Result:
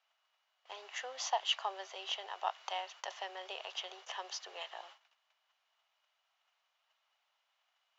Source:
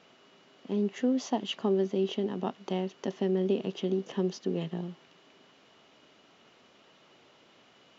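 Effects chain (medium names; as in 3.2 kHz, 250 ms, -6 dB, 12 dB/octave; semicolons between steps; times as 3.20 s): steep high-pass 710 Hz 36 dB/octave; gate -58 dBFS, range -21 dB; trim +3 dB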